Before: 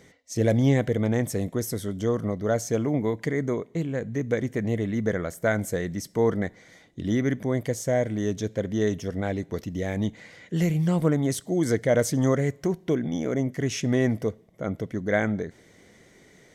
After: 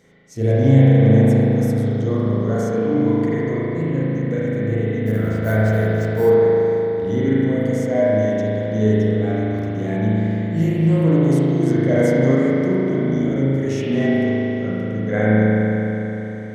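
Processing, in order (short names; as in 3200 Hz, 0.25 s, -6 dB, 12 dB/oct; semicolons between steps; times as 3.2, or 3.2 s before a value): harmonic-percussive split percussive -8 dB; 5.06–6.34 sample-rate reducer 13000 Hz, jitter 0%; spring tank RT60 3.9 s, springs 37 ms, chirp 45 ms, DRR -9.5 dB; gain -1 dB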